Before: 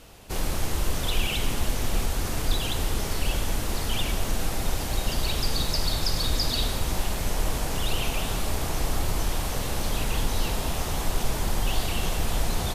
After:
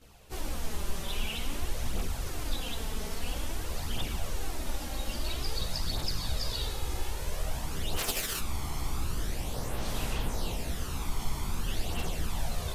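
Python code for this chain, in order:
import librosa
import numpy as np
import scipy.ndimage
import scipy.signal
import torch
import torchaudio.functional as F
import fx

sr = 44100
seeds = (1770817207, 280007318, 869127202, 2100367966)

y = fx.envelope_flatten(x, sr, power=0.3, at=(7.96, 8.38), fade=0.02)
y = fx.chorus_voices(y, sr, voices=2, hz=0.25, base_ms=15, depth_ms=2.6, mix_pct=70)
y = F.gain(torch.from_numpy(y), -5.5).numpy()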